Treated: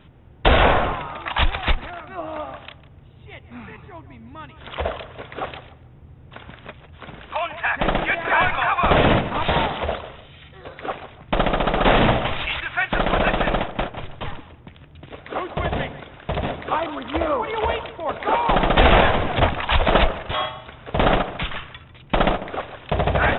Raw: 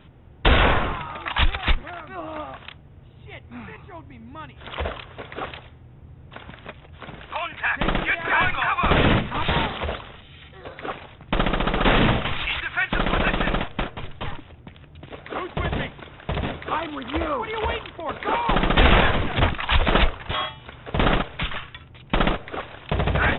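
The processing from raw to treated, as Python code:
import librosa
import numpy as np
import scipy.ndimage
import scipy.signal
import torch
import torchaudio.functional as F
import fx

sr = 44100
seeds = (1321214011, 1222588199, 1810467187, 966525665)

p1 = fx.dynamic_eq(x, sr, hz=670.0, q=1.5, threshold_db=-37.0, ratio=4.0, max_db=7)
y = p1 + fx.echo_tape(p1, sr, ms=148, feedback_pct=33, wet_db=-12, lp_hz=1700.0, drive_db=2.0, wow_cents=28, dry=0)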